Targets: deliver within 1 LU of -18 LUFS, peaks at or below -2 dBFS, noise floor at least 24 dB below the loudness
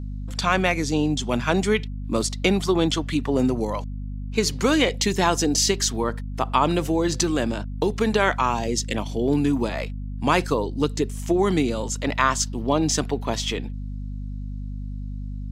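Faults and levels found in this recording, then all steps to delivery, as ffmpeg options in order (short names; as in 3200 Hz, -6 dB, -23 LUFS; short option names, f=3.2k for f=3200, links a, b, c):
hum 50 Hz; harmonics up to 250 Hz; hum level -28 dBFS; loudness -23.0 LUFS; peak -4.5 dBFS; loudness target -18.0 LUFS
-> -af "bandreject=f=50:t=h:w=6,bandreject=f=100:t=h:w=6,bandreject=f=150:t=h:w=6,bandreject=f=200:t=h:w=6,bandreject=f=250:t=h:w=6"
-af "volume=5dB,alimiter=limit=-2dB:level=0:latency=1"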